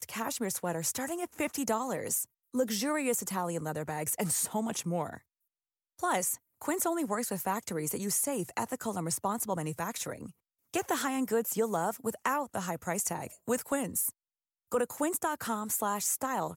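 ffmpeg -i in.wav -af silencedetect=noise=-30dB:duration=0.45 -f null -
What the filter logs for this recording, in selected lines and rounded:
silence_start: 5.14
silence_end: 6.03 | silence_duration: 0.89
silence_start: 10.13
silence_end: 10.74 | silence_duration: 0.61
silence_start: 14.09
silence_end: 14.72 | silence_duration: 0.63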